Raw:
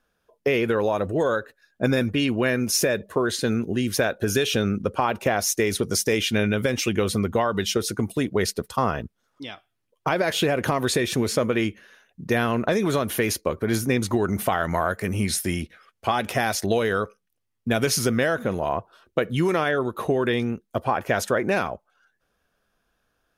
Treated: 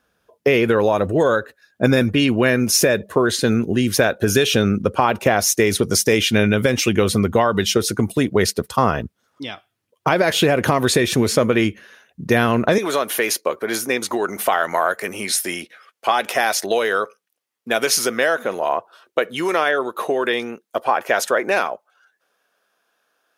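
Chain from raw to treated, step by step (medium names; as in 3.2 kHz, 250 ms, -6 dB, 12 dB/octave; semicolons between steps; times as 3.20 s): high-pass 55 Hz 12 dB/octave, from 12.78 s 450 Hz; trim +6 dB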